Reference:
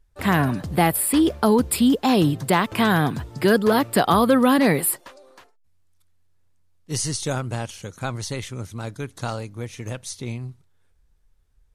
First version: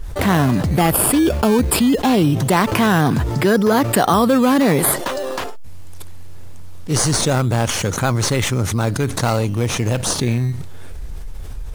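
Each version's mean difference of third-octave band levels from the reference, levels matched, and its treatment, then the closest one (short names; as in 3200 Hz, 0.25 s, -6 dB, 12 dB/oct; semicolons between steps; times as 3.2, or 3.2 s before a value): 8.5 dB: in parallel at -4.5 dB: decimation with a swept rate 15×, swing 100% 0.21 Hz; on the sum: fast leveller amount 70%; gain -3 dB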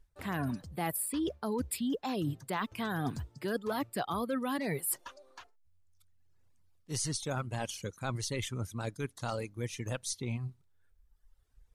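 4.5 dB: reverb removal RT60 1.2 s; reverse; compressor 6:1, threshold -32 dBFS, peak gain reduction 18 dB; reverse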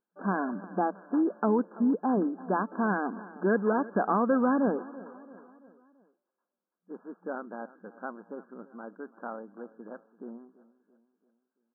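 13.5 dB: FFT band-pass 180–1700 Hz; on a send: feedback echo 0.336 s, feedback 49%, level -19 dB; on the sum: gain -8 dB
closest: second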